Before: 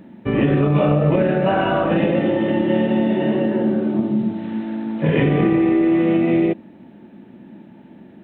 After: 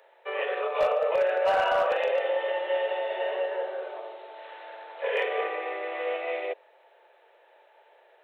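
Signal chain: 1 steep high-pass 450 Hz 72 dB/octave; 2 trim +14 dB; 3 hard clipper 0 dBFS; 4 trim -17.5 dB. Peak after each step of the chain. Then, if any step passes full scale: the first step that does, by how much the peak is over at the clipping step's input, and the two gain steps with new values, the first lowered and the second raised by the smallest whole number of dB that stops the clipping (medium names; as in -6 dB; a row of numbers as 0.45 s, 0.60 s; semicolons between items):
-9.0 dBFS, +5.0 dBFS, 0.0 dBFS, -17.5 dBFS; step 2, 5.0 dB; step 2 +9 dB, step 4 -12.5 dB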